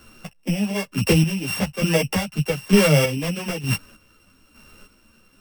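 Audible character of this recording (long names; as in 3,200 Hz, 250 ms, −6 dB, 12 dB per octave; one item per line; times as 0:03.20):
a buzz of ramps at a fixed pitch in blocks of 16 samples
chopped level 1.1 Hz, depth 60%, duty 35%
a shimmering, thickened sound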